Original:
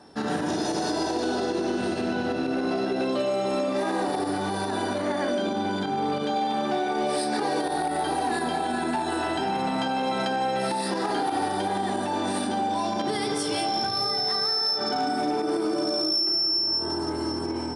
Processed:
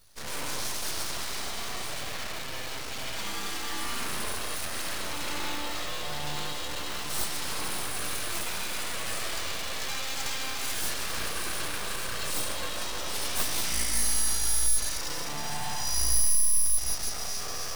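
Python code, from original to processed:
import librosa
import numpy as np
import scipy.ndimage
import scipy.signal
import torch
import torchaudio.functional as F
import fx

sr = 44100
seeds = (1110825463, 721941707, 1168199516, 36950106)

p1 = scipy.signal.lfilter([1.0, -0.8], [1.0], x)
p2 = p1 + fx.echo_split(p1, sr, split_hz=1200.0, low_ms=335, high_ms=152, feedback_pct=52, wet_db=-14.5, dry=0)
p3 = fx.rev_spring(p2, sr, rt60_s=2.7, pass_ms=(34, 45), chirp_ms=75, drr_db=-7.0)
p4 = fx.schmitt(p3, sr, flips_db=-32.5)
p5 = p3 + F.gain(torch.from_numpy(p4), -6.5).numpy()
p6 = fx.high_shelf(p5, sr, hz=2200.0, db=11.5)
p7 = np.abs(p6)
y = F.gain(torch.from_numpy(p7), -4.5).numpy()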